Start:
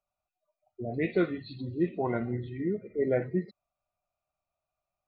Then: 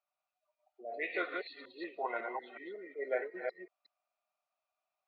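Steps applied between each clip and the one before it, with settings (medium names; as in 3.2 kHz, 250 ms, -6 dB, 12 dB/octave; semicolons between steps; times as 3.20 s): chunks repeated in reverse 184 ms, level -3.5 dB; Bessel high-pass 840 Hz, order 4; distance through air 140 m; trim +2 dB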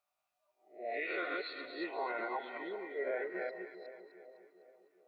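reverse spectral sustain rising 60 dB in 0.34 s; peak limiter -31 dBFS, peak gain reduction 9 dB; two-band feedback delay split 850 Hz, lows 402 ms, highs 253 ms, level -11.5 dB; trim +2.5 dB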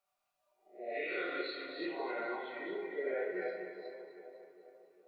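dynamic bell 930 Hz, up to -6 dB, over -50 dBFS, Q 0.87; simulated room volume 150 m³, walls mixed, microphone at 1.1 m; trim -2 dB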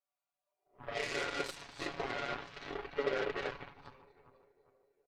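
Chebyshev shaper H 3 -23 dB, 7 -17 dB, 8 -23 dB, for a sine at -25 dBFS; comb 7.1 ms, depth 56%; trim +2 dB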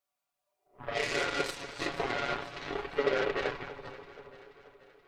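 echo whose repeats swap between lows and highs 240 ms, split 1.3 kHz, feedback 72%, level -13.5 dB; trim +5.5 dB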